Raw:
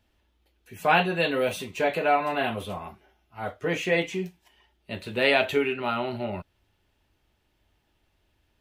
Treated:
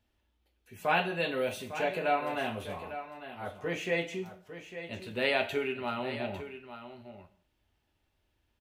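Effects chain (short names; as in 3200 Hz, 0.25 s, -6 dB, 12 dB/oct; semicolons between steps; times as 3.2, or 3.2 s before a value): on a send: echo 0.852 s -11.5 dB; on the sum: non-linear reverb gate 0.23 s falling, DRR 10.5 dB; gain -7 dB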